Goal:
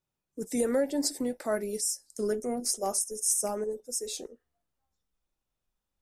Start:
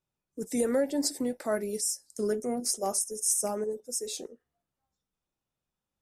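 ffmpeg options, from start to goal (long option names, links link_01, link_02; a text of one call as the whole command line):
ffmpeg -i in.wav -af "asubboost=boost=5:cutoff=51" out.wav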